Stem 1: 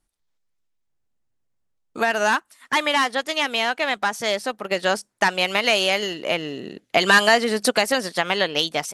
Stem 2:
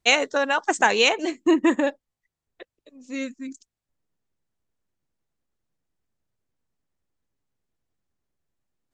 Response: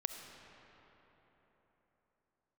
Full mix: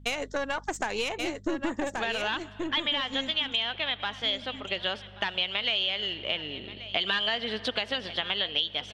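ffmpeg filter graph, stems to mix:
-filter_complex "[0:a]lowpass=f=3.3k:t=q:w=7.7,volume=-12.5dB,asplit=3[a][b][c];[b]volume=-11.5dB[d];[c]volume=-19dB[e];[1:a]acompressor=threshold=-18dB:ratio=6,aeval=exprs='(tanh(6.31*val(0)+0.55)-tanh(0.55))/6.31':c=same,aeval=exprs='val(0)+0.00562*(sin(2*PI*50*n/s)+sin(2*PI*2*50*n/s)/2+sin(2*PI*3*50*n/s)/3+sin(2*PI*4*50*n/s)/4+sin(2*PI*5*50*n/s)/5)':c=same,volume=-2.5dB,asplit=2[f][g];[g]volume=-6dB[h];[2:a]atrim=start_sample=2205[i];[d][i]afir=irnorm=-1:irlink=0[j];[e][h]amix=inputs=2:normalize=0,aecho=0:1:1130:1[k];[a][f][j][k]amix=inputs=4:normalize=0,acompressor=threshold=-26dB:ratio=3"

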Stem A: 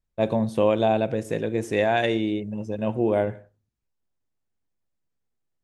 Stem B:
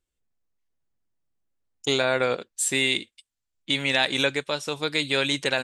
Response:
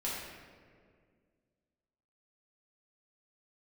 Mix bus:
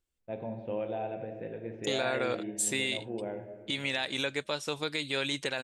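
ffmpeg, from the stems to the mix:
-filter_complex "[0:a]lowpass=f=2.9k:w=0.5412,lowpass=f=2.9k:w=1.3066,bandreject=f=1.1k:w=6,adelay=100,volume=-17.5dB,asplit=2[a][b];[b]volume=-6dB[c];[1:a]alimiter=limit=-17dB:level=0:latency=1:release=306,volume=-2dB[d];[2:a]atrim=start_sample=2205[e];[c][e]afir=irnorm=-1:irlink=0[f];[a][d][f]amix=inputs=3:normalize=0"

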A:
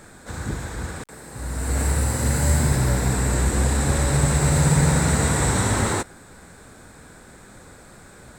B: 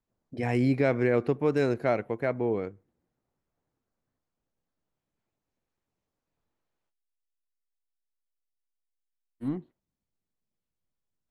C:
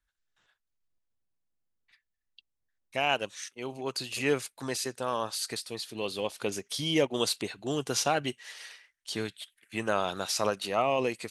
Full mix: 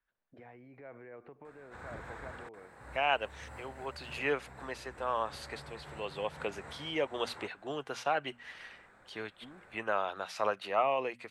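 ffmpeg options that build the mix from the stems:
-filter_complex "[0:a]acompressor=threshold=-23dB:ratio=4,adelay=1450,volume=-7.5dB[a];[1:a]acrossover=split=2600[b][c];[c]acompressor=threshold=-57dB:ratio=4:attack=1:release=60[d];[b][d]amix=inputs=2:normalize=0,alimiter=level_in=0.5dB:limit=-24dB:level=0:latency=1:release=88,volume=-0.5dB,acompressor=threshold=-35dB:ratio=5,volume=-4.5dB[e];[2:a]bandreject=f=60:t=h:w=6,bandreject=f=120:t=h:w=6,bandreject=f=180:t=h:w=6,bandreject=f=240:t=h:w=6,volume=1dB,asplit=2[f][g];[g]apad=whole_len=433877[h];[a][h]sidechaincompress=threshold=-40dB:ratio=3:attack=41:release=335[i];[i][e][f]amix=inputs=3:normalize=0,tremolo=f=0.94:d=0.29,acrossover=split=510 2800:gain=0.251 1 0.1[j][k][l];[j][k][l]amix=inputs=3:normalize=0"

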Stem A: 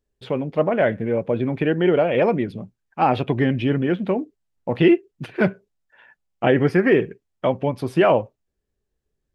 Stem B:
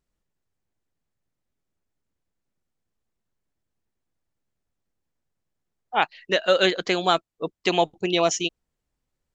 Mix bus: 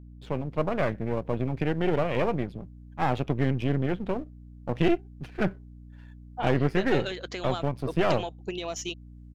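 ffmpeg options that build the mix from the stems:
-filter_complex "[0:a]aeval=exprs='if(lt(val(0),0),0.251*val(0),val(0))':c=same,equalizer=f=140:w=1.5:g=5,aeval=exprs='val(0)+0.0126*(sin(2*PI*60*n/s)+sin(2*PI*2*60*n/s)/2+sin(2*PI*3*60*n/s)/3+sin(2*PI*4*60*n/s)/4+sin(2*PI*5*60*n/s)/5)':c=same,volume=-7dB[a];[1:a]acompressor=threshold=-23dB:ratio=5,alimiter=limit=-19.5dB:level=0:latency=1:release=313,adelay=450,volume=-2dB[b];[a][b]amix=inputs=2:normalize=0,aeval=exprs='0.299*(cos(1*acos(clip(val(0)/0.299,-1,1)))-cos(1*PI/2))+0.0133*(cos(6*acos(clip(val(0)/0.299,-1,1)))-cos(6*PI/2))':c=same"

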